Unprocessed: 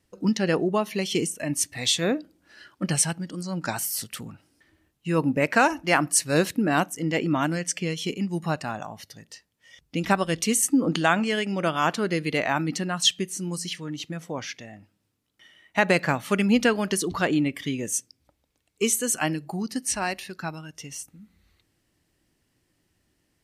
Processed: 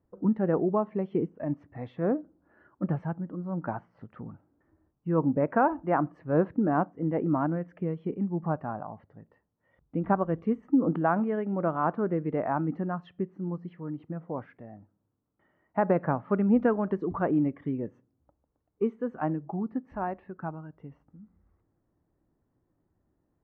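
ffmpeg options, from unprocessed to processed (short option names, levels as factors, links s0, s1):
-filter_complex "[0:a]asettb=1/sr,asplit=3[s0][s1][s2];[s0]atrim=end=16.604[s3];[s1]atrim=start=16.6:end=17.79,asetpts=PTS-STARTPTS,afade=t=in:d=0.004:c=qsin,afade=t=out:st=1.186:d=0.004:c=qsin,highshelf=f=4800:g=9[s4];[s2]atrim=start=17.786[s5];[s3][s4]acrossfade=d=0.004:c1=hsin:c2=qsin[s6];[s6][s5]acrossfade=d=0.004:c1=qsin:c2=hsin,lowpass=f=1200:w=0.5412,lowpass=f=1200:w=1.3066,volume=0.794"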